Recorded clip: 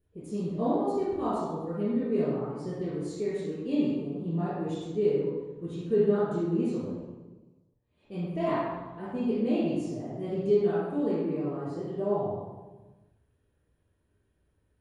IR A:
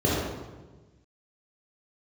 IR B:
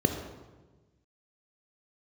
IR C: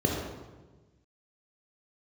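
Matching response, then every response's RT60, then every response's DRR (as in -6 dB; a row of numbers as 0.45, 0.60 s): A; 1.3, 1.3, 1.3 s; -8.0, 4.0, -2.0 dB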